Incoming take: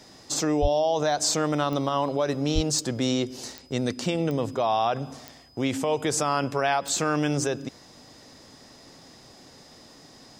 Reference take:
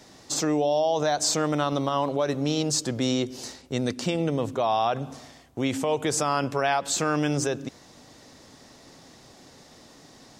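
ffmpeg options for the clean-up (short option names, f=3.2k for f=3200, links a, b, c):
-filter_complex "[0:a]adeclick=t=4,bandreject=f=5k:w=30,asplit=3[a][b][c];[a]afade=t=out:st=0.61:d=0.02[d];[b]highpass=f=140:w=0.5412,highpass=f=140:w=1.3066,afade=t=in:st=0.61:d=0.02,afade=t=out:st=0.73:d=0.02[e];[c]afade=t=in:st=0.73:d=0.02[f];[d][e][f]amix=inputs=3:normalize=0,asplit=3[g][h][i];[g]afade=t=out:st=2.54:d=0.02[j];[h]highpass=f=140:w=0.5412,highpass=f=140:w=1.3066,afade=t=in:st=2.54:d=0.02,afade=t=out:st=2.66:d=0.02[k];[i]afade=t=in:st=2.66:d=0.02[l];[j][k][l]amix=inputs=3:normalize=0"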